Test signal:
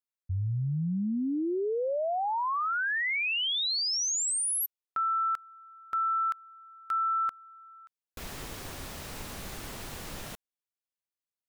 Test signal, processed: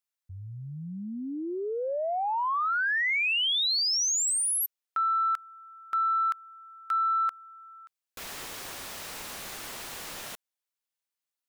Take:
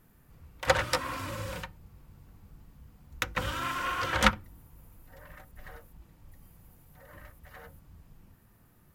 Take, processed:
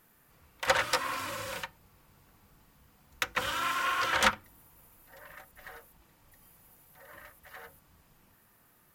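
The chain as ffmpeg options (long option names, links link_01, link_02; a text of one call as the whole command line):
ffmpeg -i in.wav -filter_complex "[0:a]crystalizer=i=1.5:c=0,asplit=2[link_01][link_02];[link_02]highpass=frequency=720:poles=1,volume=17dB,asoftclip=type=tanh:threshold=-2dB[link_03];[link_01][link_03]amix=inputs=2:normalize=0,lowpass=frequency=3800:poles=1,volume=-6dB,volume=-8.5dB" out.wav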